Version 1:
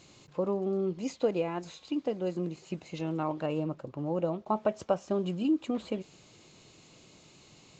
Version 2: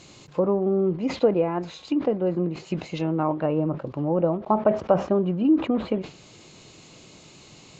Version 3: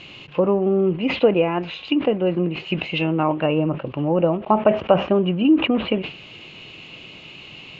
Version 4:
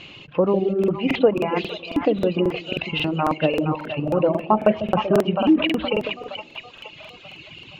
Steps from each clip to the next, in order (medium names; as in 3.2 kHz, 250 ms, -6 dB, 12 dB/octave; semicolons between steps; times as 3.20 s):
low-pass that closes with the level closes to 1.6 kHz, closed at -29 dBFS; decay stretcher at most 150 dB/s; trim +8 dB
resonant low-pass 2.8 kHz, resonance Q 5.7; trim +3.5 dB
two-band feedback delay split 610 Hz, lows 147 ms, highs 468 ms, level -5 dB; reverb removal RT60 1.8 s; crackling interface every 0.27 s, samples 2048, repeat, from 0.79 s